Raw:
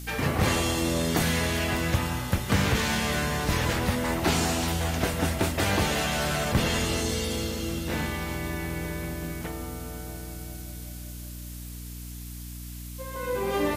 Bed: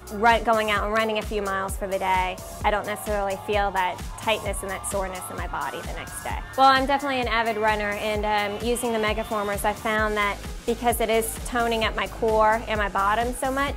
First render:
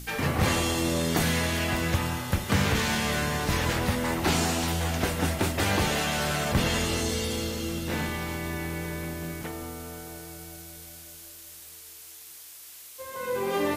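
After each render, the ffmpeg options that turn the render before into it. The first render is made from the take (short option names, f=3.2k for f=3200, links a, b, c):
-af "bandreject=f=60:t=h:w=4,bandreject=f=120:t=h:w=4,bandreject=f=180:t=h:w=4,bandreject=f=240:t=h:w=4,bandreject=f=300:t=h:w=4,bandreject=f=360:t=h:w=4,bandreject=f=420:t=h:w=4,bandreject=f=480:t=h:w=4,bandreject=f=540:t=h:w=4,bandreject=f=600:t=h:w=4,bandreject=f=660:t=h:w=4"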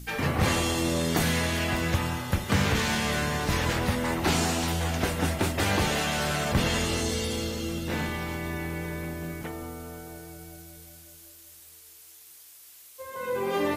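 -af "afftdn=nr=6:nf=-46"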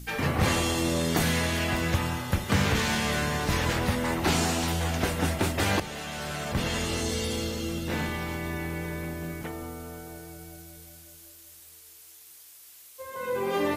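-filter_complex "[0:a]asplit=2[a][b];[a]atrim=end=5.8,asetpts=PTS-STARTPTS,afade=t=out:st=5.796:d=0.004:c=hsin:silence=0.237137[c];[b]atrim=start=5.8,asetpts=PTS-STARTPTS,afade=t=in:d=1.49:silence=0.237137[d];[c][d]concat=n=2:v=0:a=1"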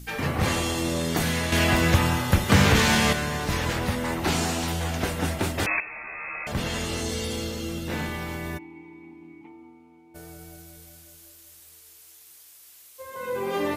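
-filter_complex "[0:a]asettb=1/sr,asplit=3[a][b][c];[a]atrim=end=1.524[d];[b]atrim=start=1.52:end=3.13,asetpts=PTS-STARTPTS,afade=t=in:d=0.004:c=qsin,afade=t=out:st=1.606:d=0.004:c=qsin,acontrast=72[e];[c]atrim=start=3.126[f];[d][e]acrossfade=d=0.004:c1=hsin:c2=qsin[g];[g][f]acrossfade=d=0.004:c1=qsin:c2=hsin,asettb=1/sr,asplit=3[h][i][j];[h]atrim=end=5.664[k];[i]atrim=start=5.66:end=6.47,asetpts=PTS-STARTPTS,afade=t=in:d=0.004:c=qsin,afade=t=out:st=0.806:d=0.004:c=qsin,lowpass=f=2.3k:t=q:w=0.5098,lowpass=f=2.3k:t=q:w=0.6013,lowpass=f=2.3k:t=q:w=0.9,lowpass=f=2.3k:t=q:w=2.563,afreqshift=-2700[l];[j]atrim=start=6.466[m];[k][l]acrossfade=d=0.004:c1=hsin:c2=qsin[n];[n][m]acrossfade=d=0.004:c1=qsin:c2=hsin,asplit=3[o][p][q];[o]afade=t=out:st=8.57:d=0.02[r];[p]asplit=3[s][t][u];[s]bandpass=f=300:t=q:w=8,volume=0dB[v];[t]bandpass=f=870:t=q:w=8,volume=-6dB[w];[u]bandpass=f=2.24k:t=q:w=8,volume=-9dB[x];[v][w][x]amix=inputs=3:normalize=0,afade=t=in:st=8.57:d=0.02,afade=t=out:st=10.14:d=0.02[y];[q]afade=t=in:st=10.14:d=0.02[z];[r][y][z]amix=inputs=3:normalize=0"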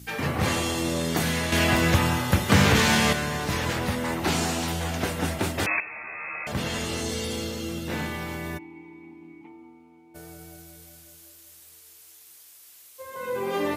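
-af "highpass=75"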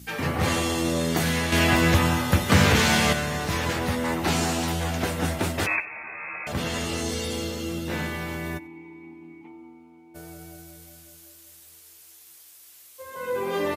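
-filter_complex "[0:a]asplit=2[a][b];[b]adelay=12,volume=-10.5dB[c];[a][c]amix=inputs=2:normalize=0,aecho=1:1:93|186:0.0631|0.0145"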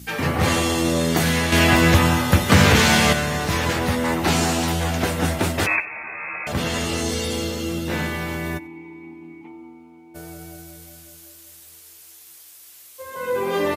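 -af "volume=4.5dB,alimiter=limit=-2dB:level=0:latency=1"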